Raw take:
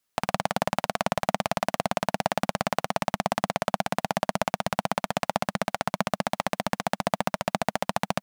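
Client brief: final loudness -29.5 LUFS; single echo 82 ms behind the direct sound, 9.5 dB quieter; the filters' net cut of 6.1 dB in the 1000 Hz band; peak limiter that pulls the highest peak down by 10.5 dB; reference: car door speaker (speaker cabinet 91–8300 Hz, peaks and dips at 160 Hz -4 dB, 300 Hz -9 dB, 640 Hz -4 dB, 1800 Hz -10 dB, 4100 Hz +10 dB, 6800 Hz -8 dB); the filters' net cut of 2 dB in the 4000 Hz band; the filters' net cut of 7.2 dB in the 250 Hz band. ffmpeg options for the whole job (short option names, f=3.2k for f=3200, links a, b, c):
-af "equalizer=f=250:t=o:g=-6,equalizer=f=1k:t=o:g=-5.5,equalizer=f=4k:t=o:g=-7,alimiter=limit=-18dB:level=0:latency=1,highpass=91,equalizer=f=160:t=q:w=4:g=-4,equalizer=f=300:t=q:w=4:g=-9,equalizer=f=640:t=q:w=4:g=-4,equalizer=f=1.8k:t=q:w=4:g=-10,equalizer=f=4.1k:t=q:w=4:g=10,equalizer=f=6.8k:t=q:w=4:g=-8,lowpass=f=8.3k:w=0.5412,lowpass=f=8.3k:w=1.3066,aecho=1:1:82:0.335,volume=13dB"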